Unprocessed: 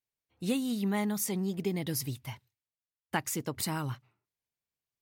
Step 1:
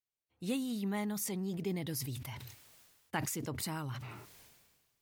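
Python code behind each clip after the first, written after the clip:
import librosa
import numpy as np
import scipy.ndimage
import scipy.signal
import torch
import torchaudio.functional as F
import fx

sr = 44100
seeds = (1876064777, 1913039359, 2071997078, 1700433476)

y = fx.sustainer(x, sr, db_per_s=39.0)
y = F.gain(torch.from_numpy(y), -5.5).numpy()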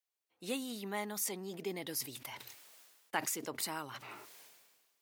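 y = scipy.signal.sosfilt(scipy.signal.butter(2, 380.0, 'highpass', fs=sr, output='sos'), x)
y = F.gain(torch.from_numpy(y), 2.0).numpy()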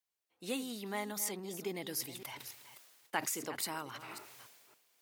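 y = fx.reverse_delay(x, sr, ms=279, wet_db=-12.5)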